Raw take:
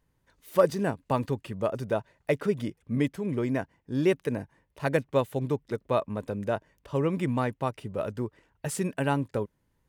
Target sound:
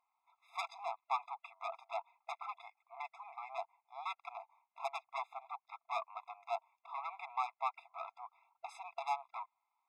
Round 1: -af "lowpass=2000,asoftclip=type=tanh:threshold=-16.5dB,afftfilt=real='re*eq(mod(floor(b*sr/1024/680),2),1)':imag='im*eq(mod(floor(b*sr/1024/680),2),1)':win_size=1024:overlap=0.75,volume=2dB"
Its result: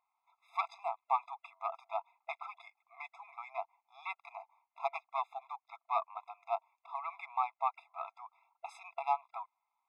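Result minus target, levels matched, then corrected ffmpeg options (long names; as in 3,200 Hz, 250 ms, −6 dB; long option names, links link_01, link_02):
soft clipping: distortion −9 dB
-af "lowpass=2000,asoftclip=type=tanh:threshold=-26.5dB,afftfilt=real='re*eq(mod(floor(b*sr/1024/680),2),1)':imag='im*eq(mod(floor(b*sr/1024/680),2),1)':win_size=1024:overlap=0.75,volume=2dB"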